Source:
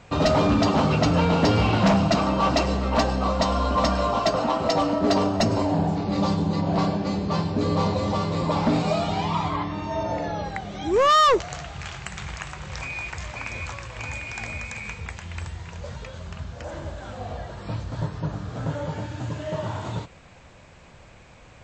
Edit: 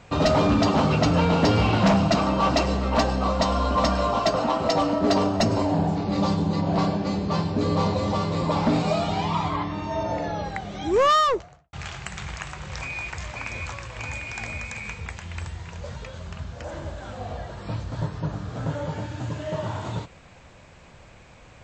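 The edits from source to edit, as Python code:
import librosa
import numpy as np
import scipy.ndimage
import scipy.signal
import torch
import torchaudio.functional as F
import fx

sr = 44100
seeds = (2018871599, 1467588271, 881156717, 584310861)

y = fx.studio_fade_out(x, sr, start_s=11.01, length_s=0.72)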